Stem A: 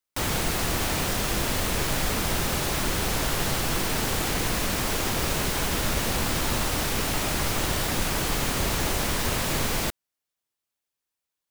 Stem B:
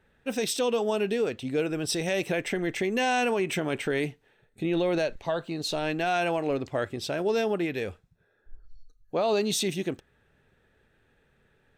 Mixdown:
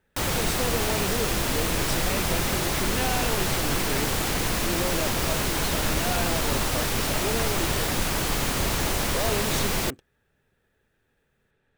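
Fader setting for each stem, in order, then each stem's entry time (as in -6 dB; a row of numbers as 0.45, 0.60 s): +0.5, -5.5 dB; 0.00, 0.00 s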